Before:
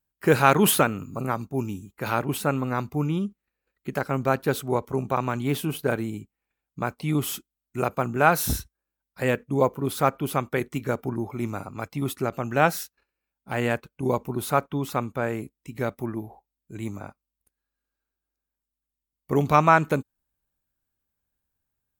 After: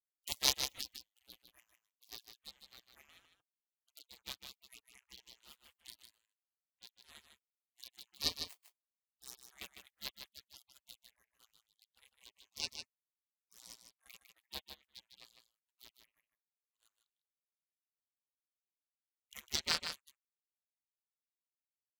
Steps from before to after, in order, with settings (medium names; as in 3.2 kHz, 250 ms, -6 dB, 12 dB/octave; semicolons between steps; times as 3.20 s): power-law waveshaper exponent 3; peaking EQ 1.5 kHz +9.5 dB 0.65 oct; in parallel at +1.5 dB: compression 6:1, threshold -42 dBFS, peak gain reduction 27 dB; 12.50–13.60 s: on the sum: touch-sensitive phaser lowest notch 160 Hz, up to 3.2 kHz, full sweep at -30.5 dBFS; spectral gate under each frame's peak -25 dB weak; on a send: delay 153 ms -7.5 dB; on the sum: trim +8 dB